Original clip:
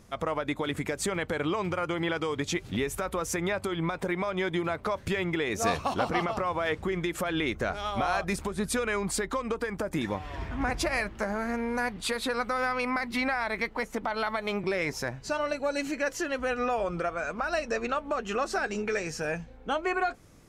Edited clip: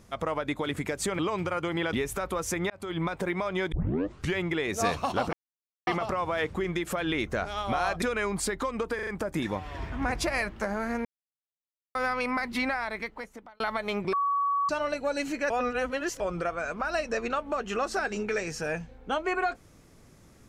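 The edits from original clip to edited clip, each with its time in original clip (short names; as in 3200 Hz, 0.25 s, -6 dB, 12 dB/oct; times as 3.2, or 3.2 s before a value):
1.19–1.45 cut
2.19–2.75 cut
3.52–3.79 fade in
4.54 tape start 0.64 s
6.15 insert silence 0.54 s
8.3–8.73 cut
9.66 stutter 0.04 s, 4 plays
11.64–12.54 mute
13.21–14.19 fade out
14.72–15.28 bleep 1130 Hz -23.5 dBFS
16.09–16.79 reverse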